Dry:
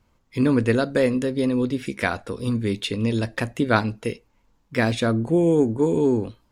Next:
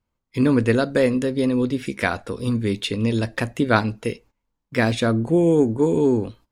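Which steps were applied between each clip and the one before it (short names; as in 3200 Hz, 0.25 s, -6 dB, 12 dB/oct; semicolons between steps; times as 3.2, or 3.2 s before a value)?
gate -48 dBFS, range -16 dB; gain +1.5 dB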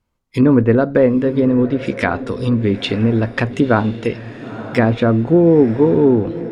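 treble ducked by the level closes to 1300 Hz, closed at -16.5 dBFS; diffused feedback echo 0.935 s, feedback 42%, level -14.5 dB; maximiser +7 dB; gain -1 dB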